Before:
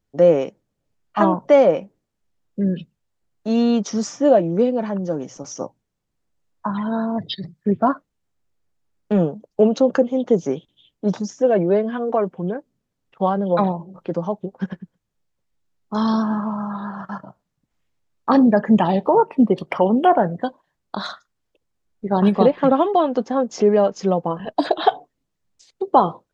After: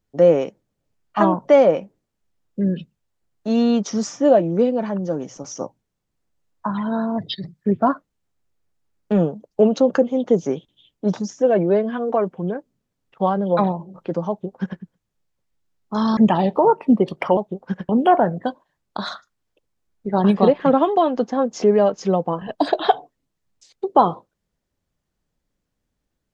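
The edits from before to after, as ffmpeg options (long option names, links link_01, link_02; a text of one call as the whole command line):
ffmpeg -i in.wav -filter_complex "[0:a]asplit=4[link_01][link_02][link_03][link_04];[link_01]atrim=end=16.172[link_05];[link_02]atrim=start=18.668:end=19.872[link_06];[link_03]atrim=start=14.288:end=14.812[link_07];[link_04]atrim=start=19.868[link_08];[link_05][link_06]acrossfade=duration=0.004:curve1=hsin:curve2=hsin[link_09];[link_09][link_07]acrossfade=duration=0.004:curve1=hsin:curve2=hsin[link_10];[link_10][link_08]acrossfade=duration=0.004:curve1=hsin:curve2=hsin" out.wav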